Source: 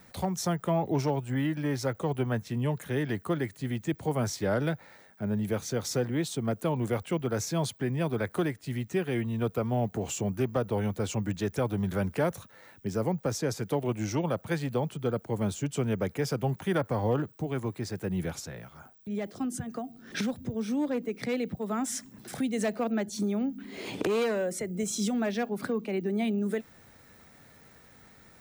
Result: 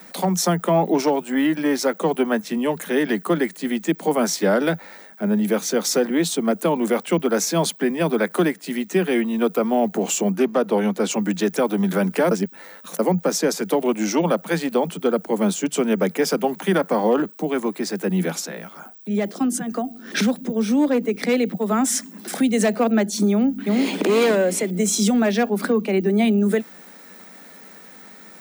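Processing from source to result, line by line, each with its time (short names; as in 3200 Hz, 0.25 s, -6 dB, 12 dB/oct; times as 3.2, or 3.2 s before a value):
10.32–11.11 high shelf 12000 Hz -11 dB
12.31–12.99 reverse
23.31–24 echo throw 0.35 s, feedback 30%, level -1 dB
whole clip: steep high-pass 170 Hz 96 dB/oct; high shelf 9100 Hz +3.5 dB; maximiser +19 dB; gain -8 dB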